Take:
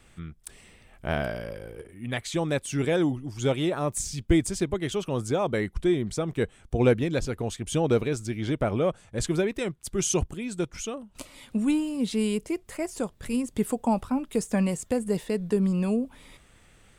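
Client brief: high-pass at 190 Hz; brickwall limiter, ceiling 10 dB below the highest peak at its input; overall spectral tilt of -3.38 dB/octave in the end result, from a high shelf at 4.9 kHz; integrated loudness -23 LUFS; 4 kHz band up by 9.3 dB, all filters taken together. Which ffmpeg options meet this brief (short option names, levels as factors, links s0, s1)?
-af "highpass=190,equalizer=f=4000:t=o:g=8,highshelf=f=4900:g=8.5,volume=2,alimiter=limit=0.266:level=0:latency=1"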